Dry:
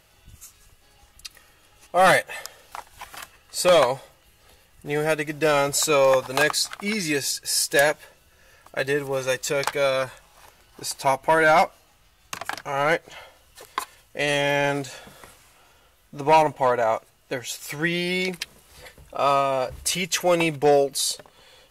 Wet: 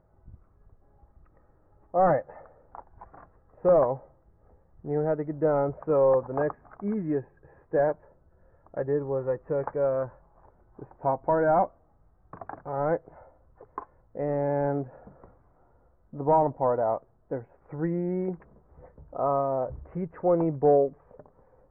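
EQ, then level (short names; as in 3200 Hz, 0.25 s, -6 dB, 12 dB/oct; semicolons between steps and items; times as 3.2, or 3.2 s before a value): Gaussian blur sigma 8 samples; air absorption 400 m; 0.0 dB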